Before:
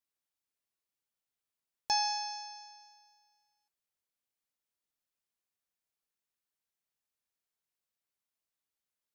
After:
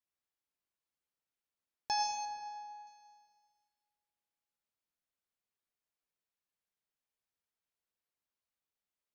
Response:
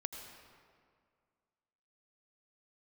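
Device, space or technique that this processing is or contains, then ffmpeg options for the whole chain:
swimming-pool hall: -filter_complex "[1:a]atrim=start_sample=2205[a];[0:a][a]afir=irnorm=-1:irlink=0,highshelf=f=4.6k:g=-7,asettb=1/sr,asplit=3[b][c][d];[b]atrim=end=2.254[e];[c]atrim=start=2.25:end=2.87,asetpts=PTS-STARTPTS,afade=t=in:d=0.004:c=qsin,afade=t=out:st=0.616:d=0.004:c=qsin,aemphasis=mode=reproduction:type=75fm[f];[d]atrim=start=2.866[g];[e][f]acrossfade=d=0.004:c1=hsin:c2=qsin[h];[h][g]acrossfade=d=0.004:c1=qsin:c2=hsin"

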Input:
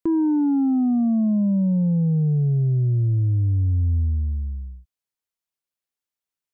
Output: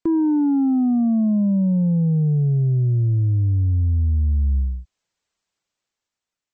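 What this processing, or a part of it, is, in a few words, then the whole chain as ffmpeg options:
low-bitrate web radio: -af "dynaudnorm=f=320:g=7:m=8.5dB,alimiter=limit=-18.5dB:level=0:latency=1:release=18,volume=3.5dB" -ar 48000 -c:a libmp3lame -b:a 32k

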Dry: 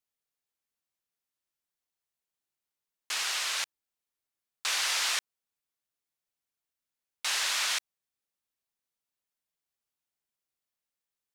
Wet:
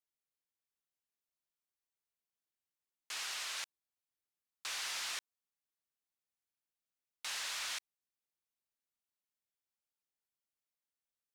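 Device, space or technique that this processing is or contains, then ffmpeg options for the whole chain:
soft clipper into limiter: -af "asoftclip=type=tanh:threshold=-22dB,alimiter=level_in=2dB:limit=-24dB:level=0:latency=1,volume=-2dB,volume=-7dB"

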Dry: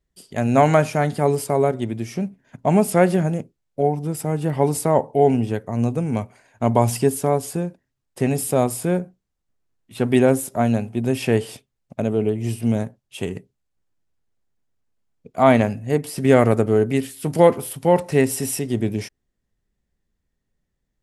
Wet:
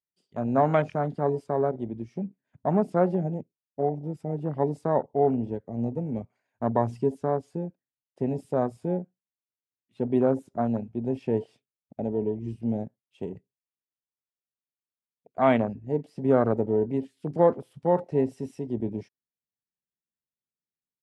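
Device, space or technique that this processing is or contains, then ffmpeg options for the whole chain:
over-cleaned archive recording: -af "highpass=130,lowpass=5.2k,afwtdn=0.0631,volume=-6.5dB"

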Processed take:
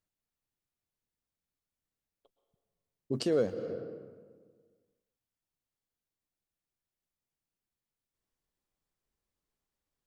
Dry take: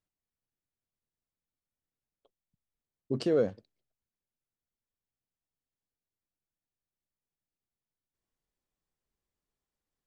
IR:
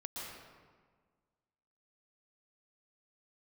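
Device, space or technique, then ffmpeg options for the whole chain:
ducked reverb: -filter_complex "[0:a]asettb=1/sr,asplit=3[a][b][c];[a]atrim=end=3.124[d];[b]atrim=start=3.12:end=3.54,asetpts=PTS-STARTPTS,afade=t=in:d=0.004:c=qsin,afade=t=out:st=0.416:d=0.004:c=qsin,aemphasis=mode=production:type=50kf[e];[c]atrim=start=3.536[f];[d][e]acrossfade=d=0.004:c1=hsin:c2=qsin[g];[g][f]acrossfade=d=0.004:c1=qsin:c2=hsin,asplit=3[h][i][j];[1:a]atrim=start_sample=2205[k];[i][k]afir=irnorm=-1:irlink=0[l];[j]apad=whole_len=443821[m];[l][m]sidechaincompress=threshold=-34dB:ratio=8:attack=6.1:release=277,volume=-3.5dB[n];[h][n]amix=inputs=2:normalize=0,volume=-2.5dB"

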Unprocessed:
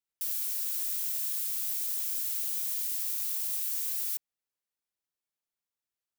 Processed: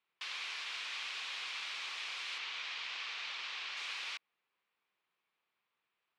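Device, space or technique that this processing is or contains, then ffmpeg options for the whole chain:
kitchen radio: -filter_complex "[0:a]asettb=1/sr,asplit=3[a][b][c];[a]atrim=end=2.384[d];[b]atrim=start=2.38:end=3.77,asetpts=PTS-STARTPTS,afade=t=in:d=0.004:c=qsin,afade=t=out:st=1.386:d=0.004:c=qsin,lowpass=5.7k[e];[c]atrim=start=3.766[f];[d][e]acrossfade=d=0.004:c1=hsin:c2=qsin[g];[g][f]acrossfade=d=0.004:c1=qsin:c2=hsin,highpass=200,equalizer=f=270:t=q:w=4:g=-8,equalizer=f=610:t=q:w=4:g=-4,equalizer=f=1.1k:t=q:w=4:g=6,equalizer=f=2.4k:t=q:w=4:g=5,lowpass=f=3.5k:w=0.5412,lowpass=f=3.5k:w=1.3066,volume=11.5dB"

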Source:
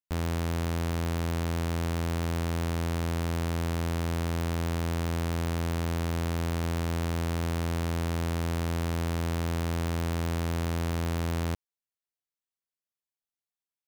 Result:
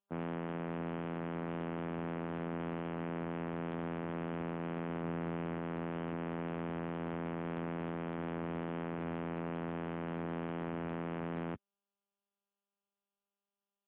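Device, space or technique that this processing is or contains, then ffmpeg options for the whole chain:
mobile call with aggressive noise cancelling: -filter_complex "[0:a]asettb=1/sr,asplit=3[a][b][c];[a]atrim=end=5.034[d];[b]atrim=start=5.03:end=5.54,asetpts=PTS-STARTPTS,afade=t=in:d=0.004:c=qsin,afade=t=out:st=0.506:d=0.004:c=qsin,lowshelf=f=140:g=5.5[e];[c]atrim=start=5.536[f];[d][e]acrossfade=d=0.004:c1=hsin:c2=qsin[g];[g][f]acrossfade=d=0.004:c1=qsin:c2=hsin,highpass=f=140:w=0.5412,highpass=f=140:w=1.3066,afftdn=nr=29:nf=-43,volume=-4dB" -ar 8000 -c:a libopencore_amrnb -b:a 10200

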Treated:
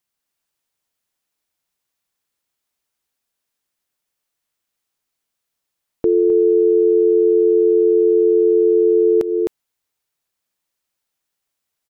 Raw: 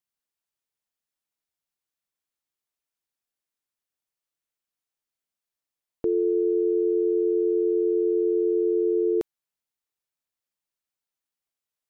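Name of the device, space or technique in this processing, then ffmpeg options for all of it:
ducked delay: -filter_complex "[0:a]asplit=3[a][b][c];[b]adelay=259,volume=-3.5dB[d];[c]apad=whole_len=535819[e];[d][e]sidechaincompress=threshold=-27dB:ratio=8:attack=5.1:release=244[f];[a][f]amix=inputs=2:normalize=0,volume=8.5dB"

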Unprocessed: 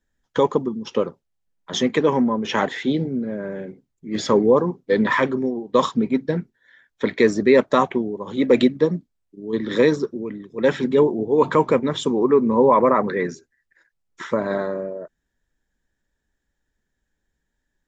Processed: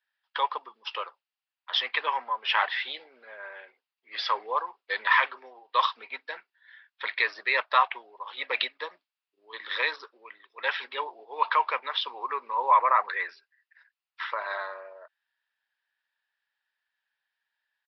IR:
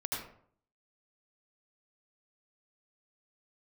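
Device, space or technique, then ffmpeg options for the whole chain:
musical greeting card: -af "aresample=11025,aresample=44100,highpass=f=890:w=0.5412,highpass=f=890:w=1.3066,equalizer=f=2.7k:t=o:w=0.27:g=7"

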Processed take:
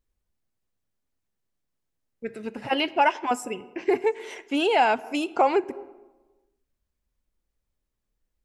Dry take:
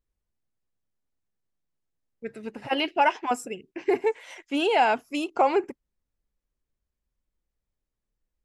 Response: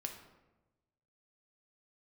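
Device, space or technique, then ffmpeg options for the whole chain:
ducked reverb: -filter_complex "[0:a]asplit=3[a][b][c];[1:a]atrim=start_sample=2205[d];[b][d]afir=irnorm=-1:irlink=0[e];[c]apad=whole_len=372639[f];[e][f]sidechaincompress=threshold=-33dB:ratio=5:attack=36:release=186,volume=-4.5dB[g];[a][g]amix=inputs=2:normalize=0"

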